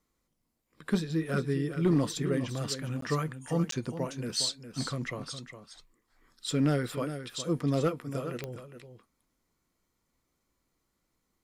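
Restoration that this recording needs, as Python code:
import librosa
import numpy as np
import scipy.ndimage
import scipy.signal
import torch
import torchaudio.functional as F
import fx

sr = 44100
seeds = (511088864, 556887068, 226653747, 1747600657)

y = fx.fix_declip(x, sr, threshold_db=-18.0)
y = fx.fix_declick_ar(y, sr, threshold=10.0)
y = fx.fix_interpolate(y, sr, at_s=(3.01, 3.71), length_ms=13.0)
y = fx.fix_echo_inverse(y, sr, delay_ms=410, level_db=-10.5)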